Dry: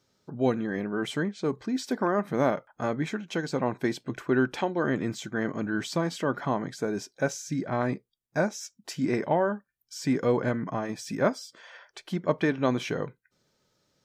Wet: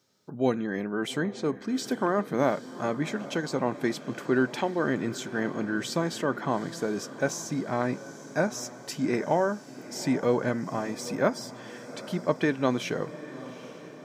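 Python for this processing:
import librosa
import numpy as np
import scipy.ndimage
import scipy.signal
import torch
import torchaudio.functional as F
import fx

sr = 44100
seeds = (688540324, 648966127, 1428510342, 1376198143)

y = scipy.signal.sosfilt(scipy.signal.butter(2, 120.0, 'highpass', fs=sr, output='sos'), x)
y = fx.high_shelf(y, sr, hz=6800.0, db=5.0)
y = fx.echo_diffused(y, sr, ms=818, feedback_pct=60, wet_db=-15.0)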